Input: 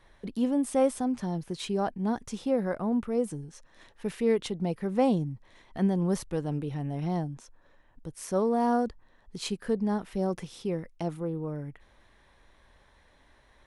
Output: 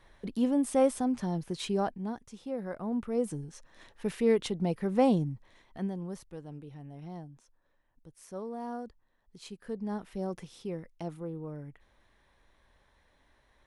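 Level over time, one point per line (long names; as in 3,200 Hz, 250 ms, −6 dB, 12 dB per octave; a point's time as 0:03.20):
0:01.80 −0.5 dB
0:02.28 −12 dB
0:03.37 0 dB
0:05.29 0 dB
0:06.16 −13 dB
0:09.47 −13 dB
0:09.96 −6 dB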